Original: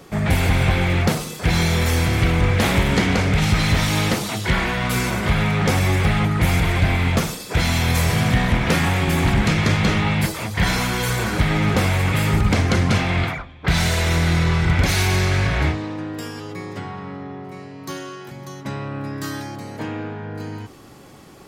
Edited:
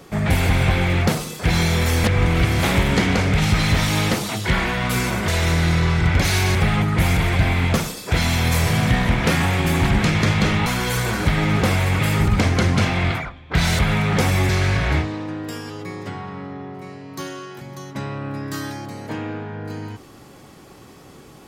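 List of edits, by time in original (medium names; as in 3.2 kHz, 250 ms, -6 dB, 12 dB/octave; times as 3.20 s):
2.04–2.63 s: reverse
5.28–5.98 s: swap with 13.92–15.19 s
10.09–10.79 s: delete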